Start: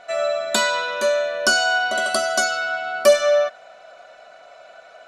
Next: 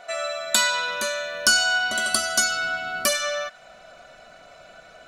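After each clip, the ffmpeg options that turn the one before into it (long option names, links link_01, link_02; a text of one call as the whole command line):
ffmpeg -i in.wav -filter_complex "[0:a]asubboost=boost=10:cutoff=220,acrossover=split=950[link_01][link_02];[link_01]acompressor=threshold=-35dB:ratio=4[link_03];[link_03][link_02]amix=inputs=2:normalize=0,highshelf=frequency=10000:gain=11.5" out.wav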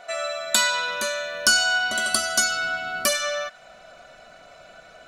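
ffmpeg -i in.wav -af anull out.wav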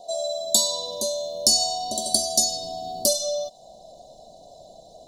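ffmpeg -i in.wav -af "asuperstop=centerf=1800:order=12:qfactor=0.63,volume=2.5dB" out.wav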